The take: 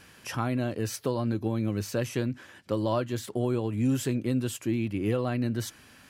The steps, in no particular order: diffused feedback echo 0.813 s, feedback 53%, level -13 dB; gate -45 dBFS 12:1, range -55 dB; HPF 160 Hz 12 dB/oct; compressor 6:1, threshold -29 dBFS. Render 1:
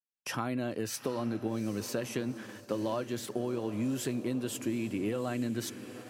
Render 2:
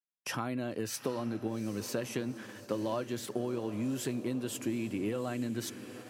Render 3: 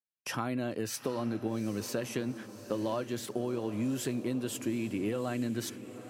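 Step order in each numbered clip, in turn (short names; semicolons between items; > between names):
HPF > compressor > diffused feedback echo > gate; compressor > diffused feedback echo > gate > HPF; HPF > compressor > gate > diffused feedback echo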